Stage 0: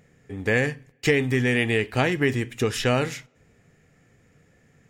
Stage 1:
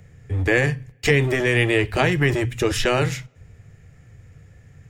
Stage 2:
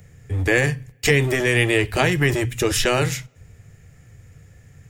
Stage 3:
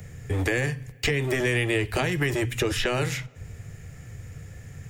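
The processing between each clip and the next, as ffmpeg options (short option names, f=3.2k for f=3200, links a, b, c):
-filter_complex "[0:a]lowshelf=f=150:t=q:w=1.5:g=12,acrossover=split=210|440|1900[a][b][c][d];[a]aeval=exprs='0.0794*(abs(mod(val(0)/0.0794+3,4)-2)-1)':c=same[e];[e][b][c][d]amix=inputs=4:normalize=0,volume=3.5dB"
-af "highshelf=f=6.3k:g=11"
-filter_complex "[0:a]acrossover=split=260|3700[a][b][c];[a]acompressor=threshold=-34dB:ratio=4[d];[b]acompressor=threshold=-30dB:ratio=4[e];[c]acompressor=threshold=-45dB:ratio=4[f];[d][e][f]amix=inputs=3:normalize=0,asplit=2[g][h];[h]alimiter=limit=-21.5dB:level=0:latency=1:release=431,volume=-0.5dB[i];[g][i]amix=inputs=2:normalize=0"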